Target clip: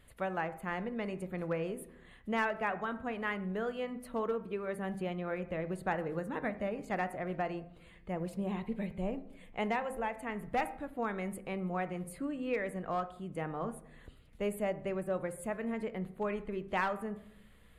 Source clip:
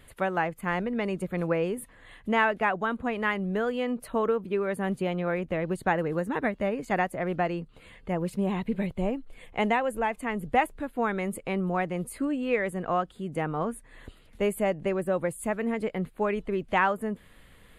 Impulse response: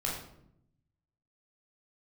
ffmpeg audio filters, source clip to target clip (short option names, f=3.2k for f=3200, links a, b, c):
-filter_complex "[0:a]aeval=exprs='clip(val(0),-1,0.112)':c=same,bandreject=f=131.9:t=h:w=4,bandreject=f=263.8:t=h:w=4,bandreject=f=395.7:t=h:w=4,bandreject=f=527.6:t=h:w=4,bandreject=f=659.5:t=h:w=4,bandreject=f=791.4:t=h:w=4,bandreject=f=923.3:t=h:w=4,bandreject=f=1.0552k:t=h:w=4,bandreject=f=1.1871k:t=h:w=4,bandreject=f=1.319k:t=h:w=4,bandreject=f=1.4509k:t=h:w=4,bandreject=f=1.5828k:t=h:w=4,bandreject=f=1.7147k:t=h:w=4,bandreject=f=1.8466k:t=h:w=4,bandreject=f=1.9785k:t=h:w=4,bandreject=f=2.1104k:t=h:w=4,bandreject=f=2.2423k:t=h:w=4,bandreject=f=2.3742k:t=h:w=4,bandreject=f=2.5061k:t=h:w=4,aeval=exprs='val(0)+0.001*(sin(2*PI*60*n/s)+sin(2*PI*2*60*n/s)/2+sin(2*PI*3*60*n/s)/3+sin(2*PI*4*60*n/s)/4+sin(2*PI*5*60*n/s)/5)':c=same,asplit=2[a][b];[1:a]atrim=start_sample=2205,highshelf=f=4.2k:g=-11[c];[b][c]afir=irnorm=-1:irlink=0,volume=-15dB[d];[a][d]amix=inputs=2:normalize=0,volume=-9dB"